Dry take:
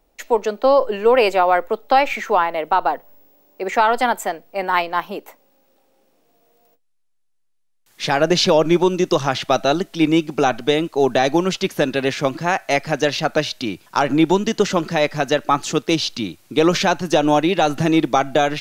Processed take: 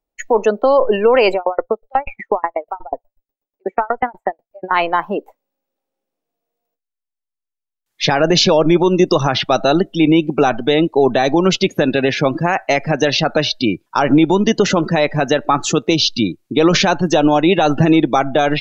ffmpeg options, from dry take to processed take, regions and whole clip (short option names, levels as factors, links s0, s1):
-filter_complex "[0:a]asettb=1/sr,asplit=3[s0][s1][s2];[s0]atrim=end=1.344[s3];[s1]atrim=start=1.34:end=4.71,asetpts=PTS-STARTPTS,afade=t=in:d=0.004:c=qsin,afade=t=out:st=3.366:d=0.004:c=qsin,acrossover=split=2600[s4][s5];[s5]acompressor=threshold=0.00708:ratio=4:attack=1:release=60[s6];[s4][s6]amix=inputs=2:normalize=0,aeval=exprs='val(0)*pow(10,-38*if(lt(mod(8.2*n/s,1),2*abs(8.2)/1000),1-mod(8.2*n/s,1)/(2*abs(8.2)/1000),(mod(8.2*n/s,1)-2*abs(8.2)/1000)/(1-2*abs(8.2)/1000))/20)':c=same[s7];[s2]atrim=start=4.706[s8];[s3][s7]acrossfade=d=0.004:c1=hsin:c2=qsin[s9];[s9][s8]acrossfade=d=0.004:c1=qsin:c2=hsin,afftdn=nr=28:nf=-30,alimiter=level_in=3.55:limit=0.891:release=50:level=0:latency=1,volume=0.75"